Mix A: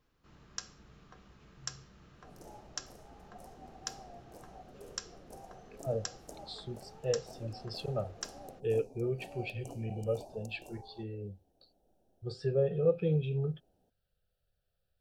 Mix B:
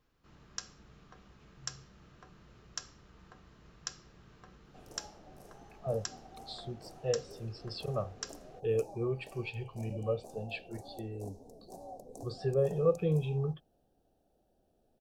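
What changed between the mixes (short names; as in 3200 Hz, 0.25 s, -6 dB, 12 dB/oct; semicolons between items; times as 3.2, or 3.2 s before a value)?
speech: remove Butterworth band-stop 1100 Hz, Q 4; second sound: entry +2.50 s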